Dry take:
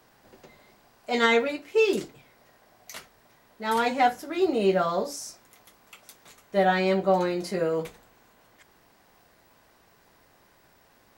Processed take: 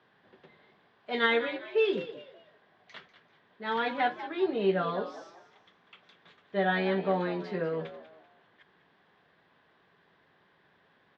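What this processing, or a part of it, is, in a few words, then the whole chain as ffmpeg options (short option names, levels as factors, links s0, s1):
frequency-shifting delay pedal into a guitar cabinet: -filter_complex "[0:a]asplit=4[s0][s1][s2][s3];[s1]adelay=194,afreqshift=75,volume=0.224[s4];[s2]adelay=388,afreqshift=150,volume=0.0741[s5];[s3]adelay=582,afreqshift=225,volume=0.0243[s6];[s0][s4][s5][s6]amix=inputs=4:normalize=0,highpass=93,equalizer=f=170:t=q:w=4:g=7,equalizer=f=410:t=q:w=4:g=5,equalizer=f=1100:t=q:w=4:g=3,equalizer=f=1700:t=q:w=4:g=8,equalizer=f=3400:t=q:w=4:g=8,lowpass=f=3800:w=0.5412,lowpass=f=3800:w=1.3066,volume=0.398"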